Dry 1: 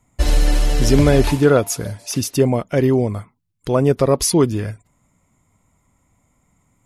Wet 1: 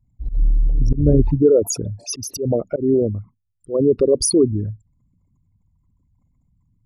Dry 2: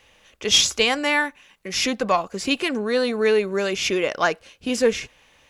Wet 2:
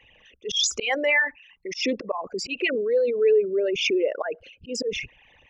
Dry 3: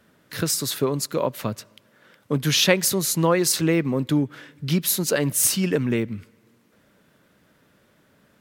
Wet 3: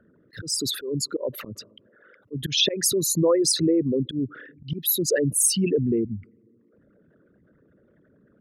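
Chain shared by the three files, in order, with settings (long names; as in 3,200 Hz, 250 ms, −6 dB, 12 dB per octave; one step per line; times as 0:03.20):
spectral envelope exaggerated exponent 3
volume swells 144 ms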